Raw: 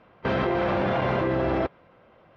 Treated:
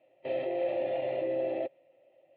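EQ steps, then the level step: vowel filter e; elliptic low-pass 4.3 kHz, stop band 40 dB; static phaser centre 310 Hz, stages 8; +7.0 dB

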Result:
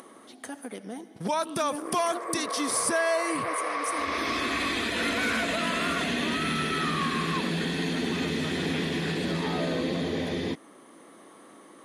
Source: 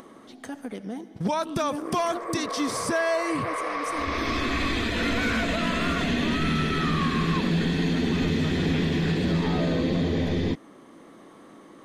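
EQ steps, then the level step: high-pass 350 Hz 6 dB/octave; peaking EQ 10 kHz +13 dB 0.34 oct; 0.0 dB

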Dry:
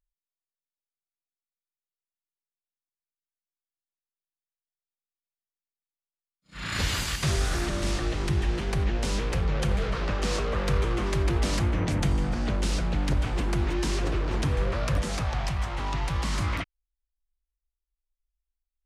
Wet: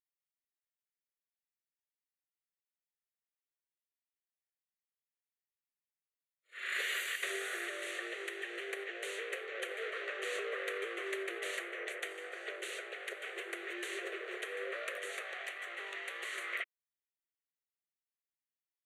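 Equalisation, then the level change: brick-wall FIR high-pass 360 Hz; peaking EQ 1.9 kHz +7 dB 0.22 oct; static phaser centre 2.2 kHz, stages 4; -4.0 dB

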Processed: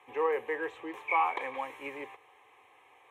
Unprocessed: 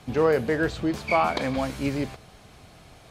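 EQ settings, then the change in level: high-pass 140 Hz 12 dB/octave; three-band isolator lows -23 dB, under 520 Hz, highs -15 dB, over 2.5 kHz; static phaser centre 960 Hz, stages 8; 0.0 dB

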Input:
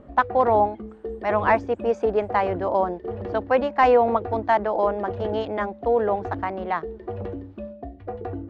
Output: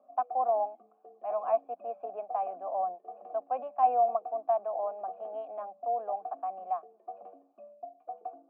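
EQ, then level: vowel filter a; rippled Chebyshev high-pass 180 Hz, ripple 9 dB; distance through air 320 m; 0.0 dB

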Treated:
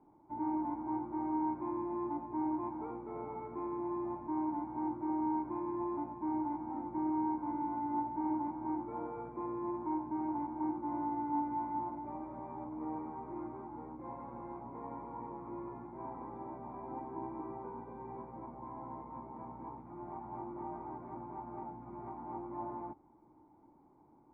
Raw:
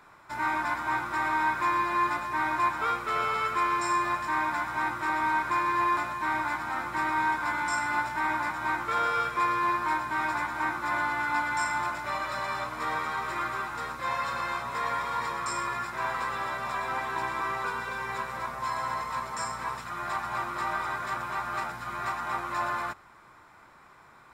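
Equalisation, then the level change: cascade formant filter u; +6.5 dB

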